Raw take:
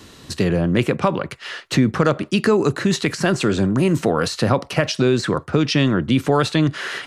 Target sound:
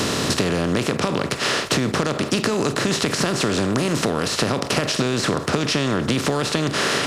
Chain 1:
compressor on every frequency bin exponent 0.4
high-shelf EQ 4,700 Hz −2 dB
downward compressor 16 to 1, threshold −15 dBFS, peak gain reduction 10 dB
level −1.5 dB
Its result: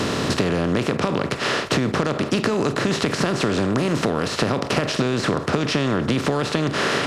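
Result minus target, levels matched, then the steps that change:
8,000 Hz band −6.0 dB
change: high-shelf EQ 4,700 Hz +8.5 dB

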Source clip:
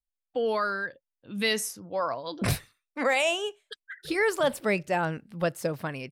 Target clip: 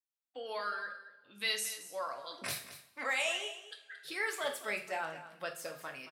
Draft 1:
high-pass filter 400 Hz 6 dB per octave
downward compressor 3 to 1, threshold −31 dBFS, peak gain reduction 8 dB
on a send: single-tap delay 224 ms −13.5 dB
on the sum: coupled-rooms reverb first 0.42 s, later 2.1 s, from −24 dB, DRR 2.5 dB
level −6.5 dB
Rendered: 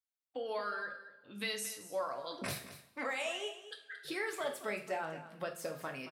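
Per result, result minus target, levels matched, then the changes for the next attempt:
downward compressor: peak gain reduction +8 dB; 500 Hz band +4.5 dB
remove: downward compressor 3 to 1, threshold −31 dBFS, peak gain reduction 8 dB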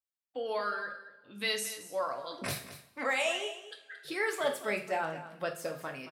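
500 Hz band +4.0 dB
change: high-pass filter 1,400 Hz 6 dB per octave

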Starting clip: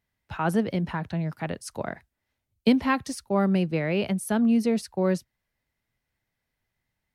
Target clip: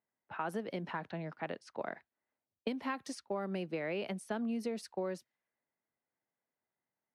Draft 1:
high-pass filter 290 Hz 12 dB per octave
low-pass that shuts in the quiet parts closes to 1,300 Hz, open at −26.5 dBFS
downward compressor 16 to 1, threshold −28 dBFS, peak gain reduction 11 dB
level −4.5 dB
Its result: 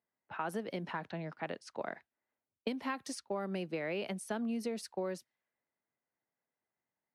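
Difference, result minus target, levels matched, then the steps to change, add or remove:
8,000 Hz band +4.0 dB
add after high-pass filter: high-shelf EQ 4,500 Hz −5 dB

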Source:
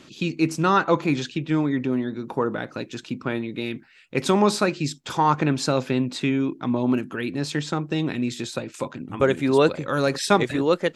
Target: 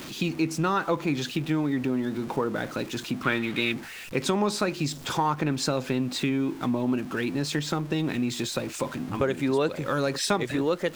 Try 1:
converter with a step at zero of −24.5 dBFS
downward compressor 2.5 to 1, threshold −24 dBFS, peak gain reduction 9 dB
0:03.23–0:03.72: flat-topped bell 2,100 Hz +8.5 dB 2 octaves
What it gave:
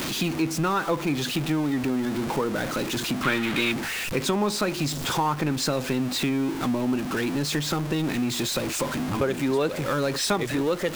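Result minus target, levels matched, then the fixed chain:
converter with a step at zero: distortion +10 dB
converter with a step at zero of −36.5 dBFS
downward compressor 2.5 to 1, threshold −24 dBFS, peak gain reduction 8.5 dB
0:03.23–0:03.72: flat-topped bell 2,100 Hz +8.5 dB 2 octaves

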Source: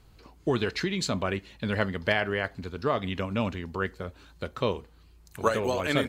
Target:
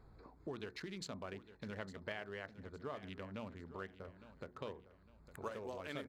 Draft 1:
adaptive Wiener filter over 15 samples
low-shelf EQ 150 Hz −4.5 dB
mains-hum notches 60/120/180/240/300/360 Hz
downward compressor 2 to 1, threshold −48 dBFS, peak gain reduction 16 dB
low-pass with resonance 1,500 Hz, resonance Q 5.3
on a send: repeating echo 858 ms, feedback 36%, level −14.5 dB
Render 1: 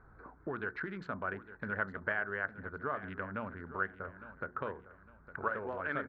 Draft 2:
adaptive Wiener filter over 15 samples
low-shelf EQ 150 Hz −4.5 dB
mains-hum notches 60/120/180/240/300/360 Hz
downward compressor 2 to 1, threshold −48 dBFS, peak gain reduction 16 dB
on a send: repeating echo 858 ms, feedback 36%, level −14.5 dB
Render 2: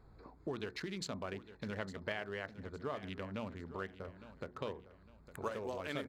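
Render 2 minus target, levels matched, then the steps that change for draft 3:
downward compressor: peak gain reduction −4.5 dB
change: downward compressor 2 to 1, threshold −57 dBFS, peak gain reduction 20.5 dB

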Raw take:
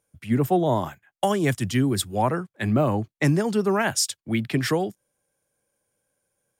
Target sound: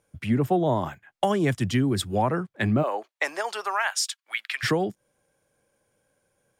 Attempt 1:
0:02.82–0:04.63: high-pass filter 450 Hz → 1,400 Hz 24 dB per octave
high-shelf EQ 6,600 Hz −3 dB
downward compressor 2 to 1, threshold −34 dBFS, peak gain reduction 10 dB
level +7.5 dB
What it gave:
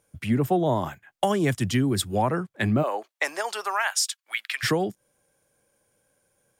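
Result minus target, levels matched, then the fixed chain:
8,000 Hz band +3.0 dB
0:02.82–0:04.63: high-pass filter 450 Hz → 1,400 Hz 24 dB per octave
high-shelf EQ 6,600 Hz −11 dB
downward compressor 2 to 1, threshold −34 dBFS, peak gain reduction 10 dB
level +7.5 dB

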